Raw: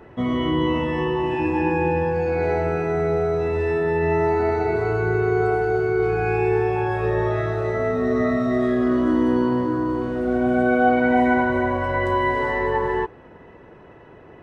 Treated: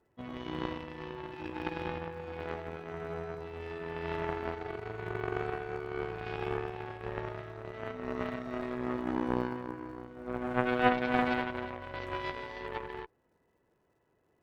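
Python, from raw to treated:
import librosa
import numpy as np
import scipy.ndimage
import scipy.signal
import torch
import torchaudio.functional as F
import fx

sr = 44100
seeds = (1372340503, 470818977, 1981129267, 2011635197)

y = fx.dmg_crackle(x, sr, seeds[0], per_s=220.0, level_db=-44.0)
y = fx.cheby_harmonics(y, sr, harmonics=(3,), levels_db=(-10,), full_scale_db=-6.0)
y = F.gain(torch.from_numpy(y), -2.0).numpy()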